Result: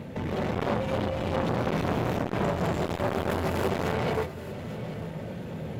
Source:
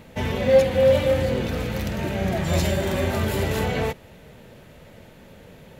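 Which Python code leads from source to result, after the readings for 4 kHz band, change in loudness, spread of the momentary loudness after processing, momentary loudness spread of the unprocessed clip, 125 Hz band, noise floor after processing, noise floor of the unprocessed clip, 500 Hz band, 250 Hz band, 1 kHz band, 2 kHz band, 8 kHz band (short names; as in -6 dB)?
-7.0 dB, -7.0 dB, 9 LU, 9 LU, -4.5 dB, -38 dBFS, -48 dBFS, -8.0 dB, -2.5 dB, +1.0 dB, -4.5 dB, -10.0 dB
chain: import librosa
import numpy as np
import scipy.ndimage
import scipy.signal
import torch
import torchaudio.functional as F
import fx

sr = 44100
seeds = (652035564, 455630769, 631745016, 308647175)

y = fx.dereverb_blind(x, sr, rt60_s=1.1)
y = scipy.signal.sosfilt(scipy.signal.butter(2, 120.0, 'highpass', fs=sr, output='sos'), y)
y = fx.tilt_eq(y, sr, slope=-2.5)
y = fx.over_compress(y, sr, threshold_db=-25.0, ratio=-0.5)
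y = np.clip(y, -10.0 ** (-26.0 / 20.0), 10.0 ** (-26.0 / 20.0))
y = y + 10.0 ** (-17.0 / 20.0) * np.pad(y, (int(839 * sr / 1000.0), 0))[:len(y)]
y = fx.rev_gated(y, sr, seeds[0], gate_ms=360, shape='rising', drr_db=-5.5)
y = fx.transformer_sat(y, sr, knee_hz=1000.0)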